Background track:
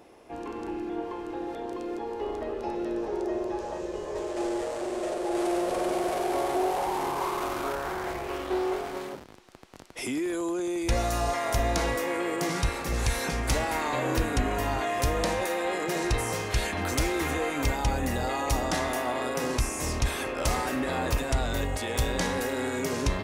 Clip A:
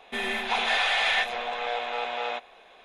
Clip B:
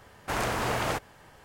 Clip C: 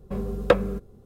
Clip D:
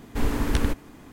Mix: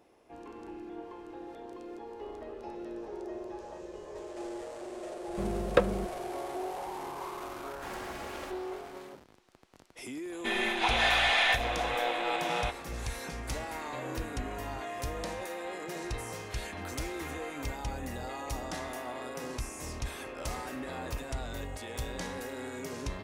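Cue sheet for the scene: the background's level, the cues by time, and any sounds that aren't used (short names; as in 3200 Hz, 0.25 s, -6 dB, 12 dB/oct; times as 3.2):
background track -10 dB
5.27 add C -5 dB
7.53 add B -12.5 dB + minimum comb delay 3.6 ms
10.32 add A -1.5 dB
not used: D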